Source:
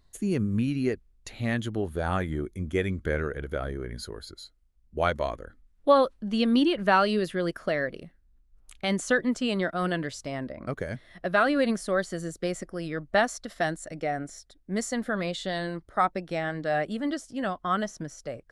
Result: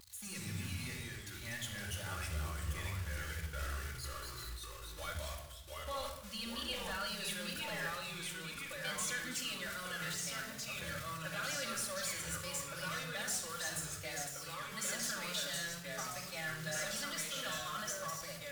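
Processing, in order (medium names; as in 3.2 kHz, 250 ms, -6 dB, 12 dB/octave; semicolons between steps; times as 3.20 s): jump at every zero crossing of -31 dBFS; gate -30 dBFS, range -17 dB; high-pass 61 Hz 24 dB/octave; treble shelf 5.1 kHz +10 dB; peak limiter -20 dBFS, peak gain reduction 13 dB; amplifier tone stack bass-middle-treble 10-0-10; saturation -34 dBFS, distortion -7 dB; ever faster or slower copies 90 ms, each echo -2 st, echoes 2; reverberation RT60 0.90 s, pre-delay 3 ms, DRR -2.5 dB; wow and flutter 27 cents; trim -4.5 dB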